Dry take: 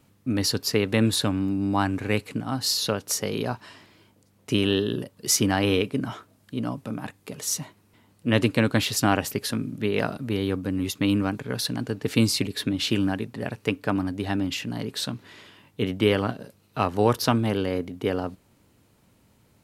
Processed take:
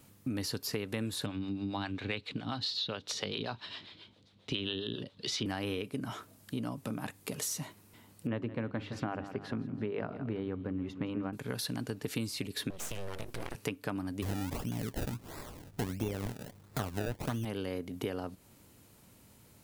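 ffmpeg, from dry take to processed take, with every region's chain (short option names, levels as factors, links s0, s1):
-filter_complex "[0:a]asettb=1/sr,asplit=3[s0][s1][s2];[s0]atrim=end=1.264[s3];[s1]atrim=start=1.26:end=5.46,asetpts=PTS-STARTPTS,afade=t=in:d=0.004:c=qsin,afade=t=out:st=4.196:d=0.004:c=qsin,lowpass=f=3700:t=q:w=4.8,acrossover=split=410[s4][s5];[s4]aeval=exprs='val(0)*(1-0.7/2+0.7/2*cos(2*PI*7.4*n/s))':c=same[s6];[s5]aeval=exprs='val(0)*(1-0.7/2-0.7/2*cos(2*PI*7.4*n/s))':c=same[s7];[s6][s7]amix=inputs=2:normalize=0[s8];[s2]atrim=start=5.456[s9];[s3][s8]acrossfade=d=0.004:c1=hsin:c2=qsin[s10];[s10][s9]acrossfade=d=0.004:c1=qsin:c2=hsin,asettb=1/sr,asplit=3[s11][s12][s13];[s11]atrim=end=8.274[s14];[s12]atrim=start=8.27:end=11.33,asetpts=PTS-STARTPTS,afade=t=in:d=0.004:c=qsin,afade=t=out:st=3.056:d=0.004:c=qsin,lowpass=1500,bandreject=f=50:t=h:w=6,bandreject=f=100:t=h:w=6,bandreject=f=150:t=h:w=6,bandreject=f=200:t=h:w=6,bandreject=f=250:t=h:w=6,bandreject=f=300:t=h:w=6,bandreject=f=350:t=h:w=6,aecho=1:1:166|332|498|664:0.15|0.0658|0.029|0.0127,atrim=end_sample=134946[s15];[s13]atrim=start=11.326[s16];[s14][s15]acrossfade=d=0.004:c1=hsin:c2=qsin[s17];[s17][s16]acrossfade=d=0.004:c1=qsin:c2=hsin,asettb=1/sr,asplit=3[s18][s19][s20];[s18]atrim=end=12.704[s21];[s19]atrim=start=12.7:end=13.55,asetpts=PTS-STARTPTS,afade=t=in:d=0.004:c=qsin,afade=t=out:st=0.846:d=0.004:c=qsin,acompressor=threshold=0.0282:ratio=6:attack=3.2:release=140:knee=1:detection=peak,aeval=exprs='abs(val(0))':c=same[s22];[s20]atrim=start=13.546[s23];[s21][s22]acrossfade=d=0.004:c1=hsin:c2=qsin[s24];[s24][s23]acrossfade=d=0.004:c1=qsin:c2=hsin,asettb=1/sr,asplit=3[s25][s26][s27];[s25]atrim=end=14.224[s28];[s26]atrim=start=14.22:end=17.45,asetpts=PTS-STARTPTS,afade=t=in:d=0.004:c=qsin,afade=t=out:st=3.226:d=0.004:c=qsin,acrusher=samples=28:mix=1:aa=0.000001:lfo=1:lforange=28:lforate=1.5,lowshelf=f=130:g=11.5[s29];[s27]atrim=start=17.446[s30];[s28][s29]acrossfade=d=0.004:c1=hsin:c2=qsin[s31];[s31][s30]acrossfade=d=0.004:c1=qsin:c2=hsin,acrossover=split=3200[s32][s33];[s33]acompressor=threshold=0.0251:ratio=4:attack=1:release=60[s34];[s32][s34]amix=inputs=2:normalize=0,highshelf=f=6100:g=9,acompressor=threshold=0.0224:ratio=6"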